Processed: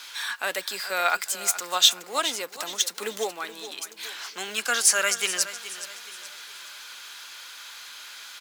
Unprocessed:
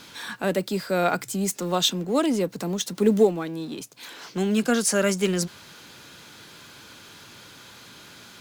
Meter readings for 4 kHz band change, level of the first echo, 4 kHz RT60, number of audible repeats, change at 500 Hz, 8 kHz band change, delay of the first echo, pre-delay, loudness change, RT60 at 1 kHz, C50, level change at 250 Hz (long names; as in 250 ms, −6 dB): +5.5 dB, −13.5 dB, no reverb audible, 3, −10.0 dB, +5.5 dB, 422 ms, no reverb audible, −0.5 dB, no reverb audible, no reverb audible, −21.5 dB